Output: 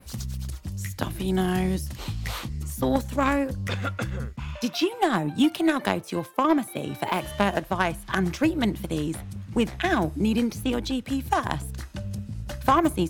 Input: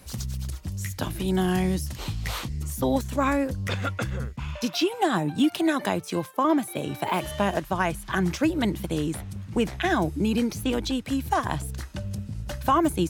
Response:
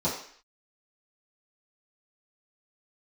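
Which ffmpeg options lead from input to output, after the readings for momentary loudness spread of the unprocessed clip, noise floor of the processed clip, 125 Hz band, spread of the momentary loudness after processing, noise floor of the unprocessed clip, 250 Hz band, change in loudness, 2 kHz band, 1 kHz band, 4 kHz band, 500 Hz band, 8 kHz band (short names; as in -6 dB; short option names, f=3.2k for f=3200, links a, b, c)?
9 LU, -43 dBFS, -0.5 dB, 11 LU, -42 dBFS, +0.5 dB, 0.0 dB, +1.0 dB, +0.5 dB, 0.0 dB, 0.0 dB, -2.0 dB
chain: -filter_complex "[0:a]aeval=exprs='0.335*(cos(1*acos(clip(val(0)/0.335,-1,1)))-cos(1*PI/2))+0.0668*(cos(3*acos(clip(val(0)/0.335,-1,1)))-cos(3*PI/2))+0.00531*(cos(5*acos(clip(val(0)/0.335,-1,1)))-cos(5*PI/2))':c=same,adynamicequalizer=threshold=0.00355:dfrequency=6400:dqfactor=0.88:tfrequency=6400:tqfactor=0.88:attack=5:release=100:ratio=0.375:range=3:mode=cutabove:tftype=bell,asplit=2[a][b];[1:a]atrim=start_sample=2205,asetrate=57330,aresample=44100[c];[b][c]afir=irnorm=-1:irlink=0,volume=-29.5dB[d];[a][d]amix=inputs=2:normalize=0,volume=5dB"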